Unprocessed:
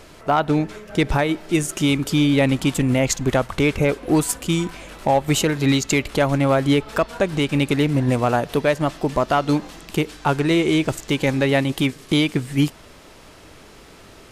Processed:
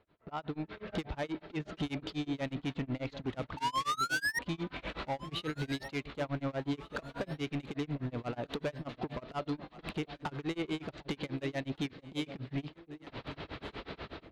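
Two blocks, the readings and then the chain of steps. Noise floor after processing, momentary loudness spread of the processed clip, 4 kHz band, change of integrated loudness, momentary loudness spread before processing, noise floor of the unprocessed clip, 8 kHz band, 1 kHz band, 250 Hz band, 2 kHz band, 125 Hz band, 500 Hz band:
-65 dBFS, 10 LU, -15.5 dB, -17.5 dB, 5 LU, -45 dBFS, -23.0 dB, -15.0 dB, -18.0 dB, -13.5 dB, -18.0 dB, -19.0 dB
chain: compression 6:1, threshold -33 dBFS, peak gain reduction 18.5 dB; painted sound rise, 3.57–4.39 s, 880–1900 Hz -24 dBFS; Chebyshev low-pass 4.1 kHz, order 4; level rider gain up to 6.5 dB; high-pass 41 Hz 12 dB/octave; saturation -28 dBFS, distortion -5 dB; gate with hold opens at -32 dBFS; echo whose repeats swap between lows and highs 748 ms, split 800 Hz, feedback 58%, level -11.5 dB; tremolo 8.2 Hz, depth 98%; tape noise reduction on one side only decoder only

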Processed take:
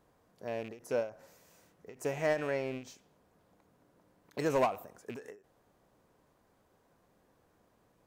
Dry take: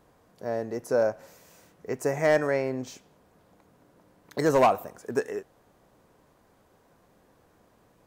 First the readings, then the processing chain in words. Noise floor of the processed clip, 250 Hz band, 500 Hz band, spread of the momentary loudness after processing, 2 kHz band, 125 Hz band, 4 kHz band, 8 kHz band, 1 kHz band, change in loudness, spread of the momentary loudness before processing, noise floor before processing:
-71 dBFS, -8.5 dB, -9.0 dB, 16 LU, -8.0 dB, -8.0 dB, -6.5 dB, -8.0 dB, -9.5 dB, -8.5 dB, 16 LU, -63 dBFS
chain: rattle on loud lows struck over -35 dBFS, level -30 dBFS; endings held to a fixed fall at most 170 dB/s; trim -7.5 dB

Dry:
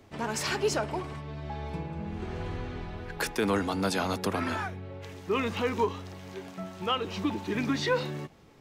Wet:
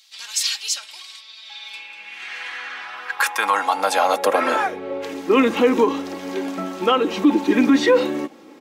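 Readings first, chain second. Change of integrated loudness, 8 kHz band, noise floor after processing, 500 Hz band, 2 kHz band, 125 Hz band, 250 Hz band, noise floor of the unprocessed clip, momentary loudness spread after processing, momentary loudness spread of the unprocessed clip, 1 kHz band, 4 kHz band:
+11.5 dB, +11.5 dB, -44 dBFS, +11.0 dB, +10.5 dB, no reading, +12.0 dB, -52 dBFS, 18 LU, 13 LU, +11.5 dB, +9.5 dB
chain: dynamic bell 4.8 kHz, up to -5 dB, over -50 dBFS, Q 2.2; comb 3.7 ms, depth 48%; in parallel at -0.5 dB: gain riding within 3 dB 0.5 s; on the sum: high-pass sweep 4 kHz -> 310 Hz, 1.29–5.19 s; loudness maximiser +10 dB; trim -5.5 dB

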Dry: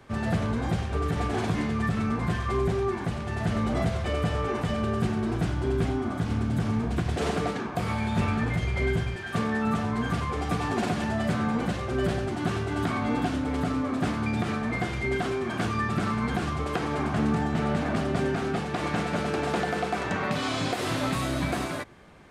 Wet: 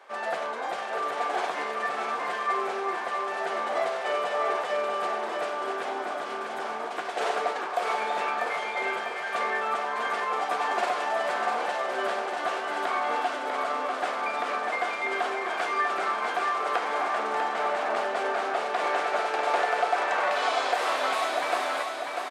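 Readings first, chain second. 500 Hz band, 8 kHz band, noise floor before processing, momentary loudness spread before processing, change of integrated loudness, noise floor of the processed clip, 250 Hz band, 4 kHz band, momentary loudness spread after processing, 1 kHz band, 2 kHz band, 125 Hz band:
+1.0 dB, -1.0 dB, -33 dBFS, 3 LU, 0.0 dB, -34 dBFS, -16.5 dB, +1.5 dB, 5 LU, +6.0 dB, +4.0 dB, under -30 dB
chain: high-pass 590 Hz 24 dB/octave; tilt EQ -2.5 dB/octave; feedback delay 645 ms, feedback 49%, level -5 dB; trim +4.5 dB

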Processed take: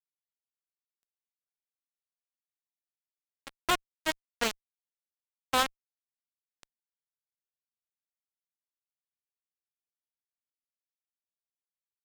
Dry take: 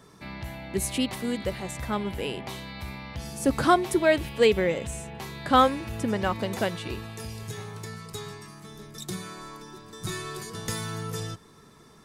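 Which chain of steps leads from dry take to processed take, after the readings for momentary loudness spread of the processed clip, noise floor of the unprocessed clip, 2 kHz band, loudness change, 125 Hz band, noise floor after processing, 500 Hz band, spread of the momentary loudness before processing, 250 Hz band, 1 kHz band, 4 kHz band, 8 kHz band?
7 LU, -53 dBFS, -6.5 dB, -3.0 dB, -25.0 dB, under -85 dBFS, -17.0 dB, 18 LU, -18.0 dB, -9.5 dB, -4.5 dB, -7.5 dB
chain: local Wiener filter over 15 samples; Chebyshev shaper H 3 -8 dB, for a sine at -6 dBFS; fuzz box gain 26 dB, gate -35 dBFS; trim -1.5 dB

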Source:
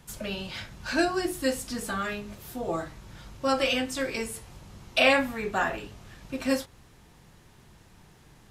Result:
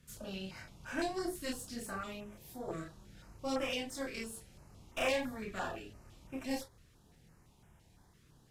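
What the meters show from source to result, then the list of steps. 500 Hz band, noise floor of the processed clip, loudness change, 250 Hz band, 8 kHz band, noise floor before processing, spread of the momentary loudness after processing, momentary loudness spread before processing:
-10.5 dB, -65 dBFS, -11.5 dB, -10.0 dB, -8.5 dB, -56 dBFS, 16 LU, 20 LU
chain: valve stage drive 22 dB, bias 0.7; chorus voices 2, 0.28 Hz, delay 29 ms, depth 3.7 ms; step-sequenced notch 5.9 Hz 840–4300 Hz; trim -2 dB

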